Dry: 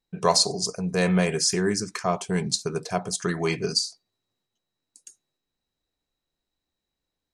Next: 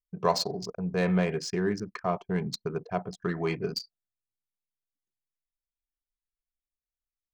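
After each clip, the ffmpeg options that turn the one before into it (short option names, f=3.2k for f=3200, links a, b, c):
-af "aemphasis=mode=reproduction:type=50kf,adynamicsmooth=sensitivity=2:basefreq=4.1k,anlmdn=1.58,volume=-3.5dB"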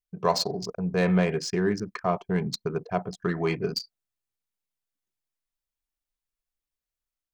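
-af "dynaudnorm=f=210:g=3:m=3dB"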